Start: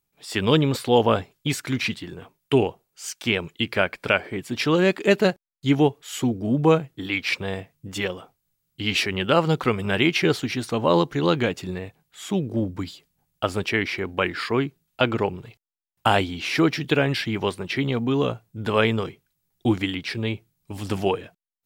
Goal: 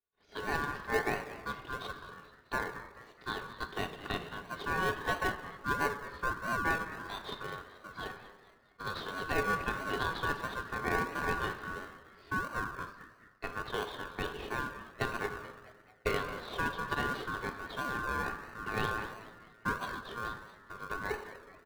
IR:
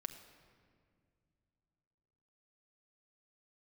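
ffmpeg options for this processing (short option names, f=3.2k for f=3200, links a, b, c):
-filter_complex "[0:a]lowpass=f=2.8k:w=0.5412,lowpass=f=2.8k:w=1.3066,asubboost=boost=3.5:cutoff=220,highpass=150,aeval=exprs='val(0)*sin(2*PI*1300*n/s)':c=same,equalizer=f=420:t=o:w=0.3:g=15,asplit=5[a][b][c][d][e];[b]adelay=216,afreqshift=110,volume=-14.5dB[f];[c]adelay=432,afreqshift=220,volume=-21.2dB[g];[d]adelay=648,afreqshift=330,volume=-28dB[h];[e]adelay=864,afreqshift=440,volume=-34.7dB[i];[a][f][g][h][i]amix=inputs=5:normalize=0[j];[1:a]atrim=start_sample=2205,asetrate=83790,aresample=44100[k];[j][k]afir=irnorm=-1:irlink=0,asplit=2[l][m];[m]acrusher=samples=36:mix=1:aa=0.000001:lfo=1:lforange=21.6:lforate=1.5,volume=-5dB[n];[l][n]amix=inputs=2:normalize=0,volume=-5.5dB"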